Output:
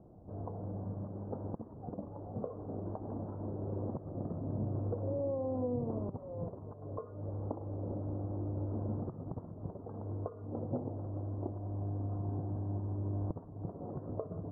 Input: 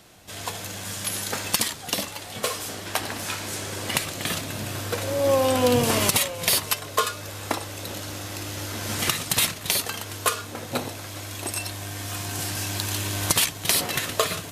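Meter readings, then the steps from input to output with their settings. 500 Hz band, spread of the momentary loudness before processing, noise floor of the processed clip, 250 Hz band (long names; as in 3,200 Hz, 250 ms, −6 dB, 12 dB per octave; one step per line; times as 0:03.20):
−12.0 dB, 12 LU, −50 dBFS, −7.0 dB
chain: downward compressor 12 to 1, threshold −29 dBFS, peak gain reduction 14 dB
Gaussian smoothing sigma 13 samples
level +1 dB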